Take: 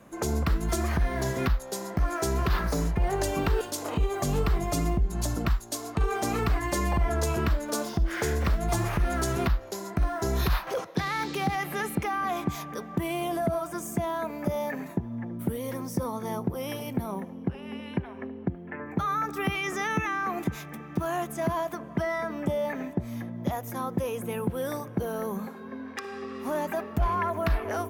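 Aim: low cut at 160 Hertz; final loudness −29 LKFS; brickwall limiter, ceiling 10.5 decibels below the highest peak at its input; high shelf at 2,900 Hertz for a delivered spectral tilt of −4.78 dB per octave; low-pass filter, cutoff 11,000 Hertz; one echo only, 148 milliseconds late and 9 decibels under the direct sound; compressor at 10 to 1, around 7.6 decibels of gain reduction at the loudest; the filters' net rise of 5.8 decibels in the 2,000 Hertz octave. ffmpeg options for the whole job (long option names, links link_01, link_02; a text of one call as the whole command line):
ffmpeg -i in.wav -af "highpass=160,lowpass=11000,equalizer=frequency=2000:width_type=o:gain=8.5,highshelf=frequency=2900:gain=-4.5,acompressor=threshold=-31dB:ratio=10,alimiter=level_in=4.5dB:limit=-24dB:level=0:latency=1,volume=-4.5dB,aecho=1:1:148:0.355,volume=8dB" out.wav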